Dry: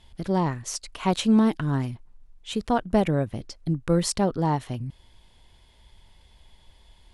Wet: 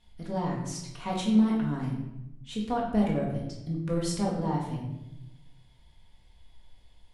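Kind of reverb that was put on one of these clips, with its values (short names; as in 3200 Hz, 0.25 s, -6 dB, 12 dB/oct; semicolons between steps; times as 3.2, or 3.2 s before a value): shoebox room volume 330 m³, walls mixed, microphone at 1.8 m; gain -11.5 dB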